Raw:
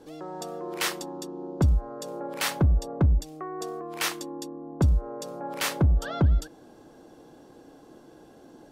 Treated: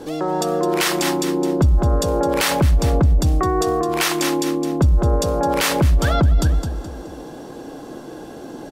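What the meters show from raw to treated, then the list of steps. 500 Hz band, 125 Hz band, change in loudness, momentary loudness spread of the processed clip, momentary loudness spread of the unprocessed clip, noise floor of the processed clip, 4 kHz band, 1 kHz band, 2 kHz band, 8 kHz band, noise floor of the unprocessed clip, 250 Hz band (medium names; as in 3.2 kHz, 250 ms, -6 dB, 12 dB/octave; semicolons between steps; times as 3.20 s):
+14.5 dB, +7.5 dB, +9.5 dB, 18 LU, 13 LU, -36 dBFS, +10.0 dB, +13.5 dB, +10.0 dB, +10.5 dB, -52 dBFS, +12.0 dB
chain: on a send: feedback delay 212 ms, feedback 35%, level -12 dB; on the sum: loudness maximiser +24 dB; trim -8 dB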